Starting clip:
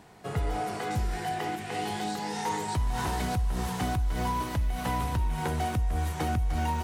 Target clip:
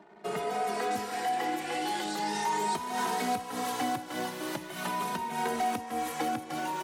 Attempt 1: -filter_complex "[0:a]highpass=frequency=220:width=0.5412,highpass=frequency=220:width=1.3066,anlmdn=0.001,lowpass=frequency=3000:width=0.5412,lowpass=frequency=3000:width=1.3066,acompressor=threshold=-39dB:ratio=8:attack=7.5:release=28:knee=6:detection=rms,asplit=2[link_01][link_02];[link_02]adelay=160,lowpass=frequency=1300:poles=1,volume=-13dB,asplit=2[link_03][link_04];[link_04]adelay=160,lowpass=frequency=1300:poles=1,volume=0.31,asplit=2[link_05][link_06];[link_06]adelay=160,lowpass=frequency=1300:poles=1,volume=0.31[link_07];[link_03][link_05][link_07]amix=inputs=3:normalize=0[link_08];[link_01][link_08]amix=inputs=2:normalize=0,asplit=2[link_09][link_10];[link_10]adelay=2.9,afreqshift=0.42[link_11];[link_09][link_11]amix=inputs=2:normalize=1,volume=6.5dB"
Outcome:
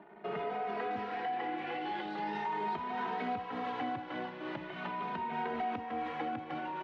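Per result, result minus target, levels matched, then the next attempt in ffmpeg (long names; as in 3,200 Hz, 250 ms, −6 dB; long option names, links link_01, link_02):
downward compressor: peak gain reduction +6.5 dB; 4,000 Hz band −5.0 dB
-filter_complex "[0:a]highpass=frequency=220:width=0.5412,highpass=frequency=220:width=1.3066,anlmdn=0.001,lowpass=frequency=3000:width=0.5412,lowpass=frequency=3000:width=1.3066,acompressor=threshold=-31.5dB:ratio=8:attack=7.5:release=28:knee=6:detection=rms,asplit=2[link_01][link_02];[link_02]adelay=160,lowpass=frequency=1300:poles=1,volume=-13dB,asplit=2[link_03][link_04];[link_04]adelay=160,lowpass=frequency=1300:poles=1,volume=0.31,asplit=2[link_05][link_06];[link_06]adelay=160,lowpass=frequency=1300:poles=1,volume=0.31[link_07];[link_03][link_05][link_07]amix=inputs=3:normalize=0[link_08];[link_01][link_08]amix=inputs=2:normalize=0,asplit=2[link_09][link_10];[link_10]adelay=2.9,afreqshift=0.42[link_11];[link_09][link_11]amix=inputs=2:normalize=1,volume=6.5dB"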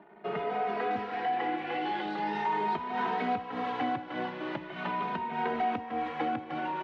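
4,000 Hz band −5.5 dB
-filter_complex "[0:a]highpass=frequency=220:width=0.5412,highpass=frequency=220:width=1.3066,anlmdn=0.001,acompressor=threshold=-31.5dB:ratio=8:attack=7.5:release=28:knee=6:detection=rms,asplit=2[link_01][link_02];[link_02]adelay=160,lowpass=frequency=1300:poles=1,volume=-13dB,asplit=2[link_03][link_04];[link_04]adelay=160,lowpass=frequency=1300:poles=1,volume=0.31,asplit=2[link_05][link_06];[link_06]adelay=160,lowpass=frequency=1300:poles=1,volume=0.31[link_07];[link_03][link_05][link_07]amix=inputs=3:normalize=0[link_08];[link_01][link_08]amix=inputs=2:normalize=0,asplit=2[link_09][link_10];[link_10]adelay=2.9,afreqshift=0.42[link_11];[link_09][link_11]amix=inputs=2:normalize=1,volume=6.5dB"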